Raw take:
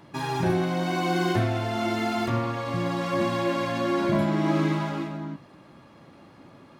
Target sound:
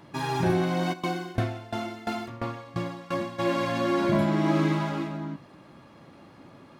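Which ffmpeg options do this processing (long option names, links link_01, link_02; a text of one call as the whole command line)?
ffmpeg -i in.wav -filter_complex "[0:a]asplit=3[link_01][link_02][link_03];[link_01]afade=type=out:start_time=0.92:duration=0.02[link_04];[link_02]aeval=exprs='val(0)*pow(10,-20*if(lt(mod(2.9*n/s,1),2*abs(2.9)/1000),1-mod(2.9*n/s,1)/(2*abs(2.9)/1000),(mod(2.9*n/s,1)-2*abs(2.9)/1000)/(1-2*abs(2.9)/1000))/20)':channel_layout=same,afade=type=in:start_time=0.92:duration=0.02,afade=type=out:start_time=3.38:duration=0.02[link_05];[link_03]afade=type=in:start_time=3.38:duration=0.02[link_06];[link_04][link_05][link_06]amix=inputs=3:normalize=0" out.wav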